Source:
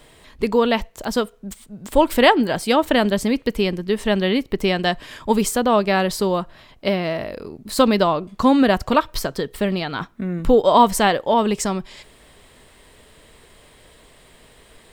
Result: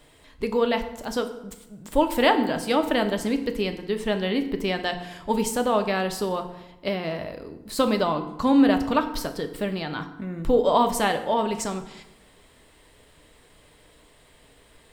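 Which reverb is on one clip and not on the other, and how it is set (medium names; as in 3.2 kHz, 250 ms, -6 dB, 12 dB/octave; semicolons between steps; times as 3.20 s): FDN reverb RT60 0.93 s, low-frequency decay 1.2×, high-frequency decay 0.7×, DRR 6.5 dB; trim -6.5 dB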